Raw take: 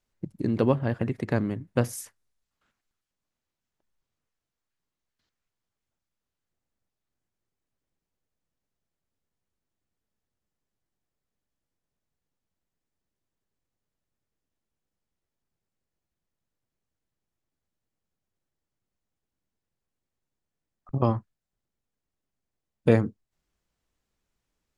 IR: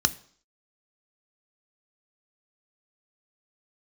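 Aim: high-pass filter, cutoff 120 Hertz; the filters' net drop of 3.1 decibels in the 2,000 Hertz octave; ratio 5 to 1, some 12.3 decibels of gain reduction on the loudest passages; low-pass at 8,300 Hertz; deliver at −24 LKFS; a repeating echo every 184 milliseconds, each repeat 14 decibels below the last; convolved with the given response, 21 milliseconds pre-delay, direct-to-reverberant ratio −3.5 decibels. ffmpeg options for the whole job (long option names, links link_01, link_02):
-filter_complex "[0:a]highpass=120,lowpass=8300,equalizer=frequency=2000:width_type=o:gain=-4,acompressor=threshold=-28dB:ratio=5,aecho=1:1:184|368:0.2|0.0399,asplit=2[link_01][link_02];[1:a]atrim=start_sample=2205,adelay=21[link_03];[link_02][link_03]afir=irnorm=-1:irlink=0,volume=-7dB[link_04];[link_01][link_04]amix=inputs=2:normalize=0,volume=5.5dB"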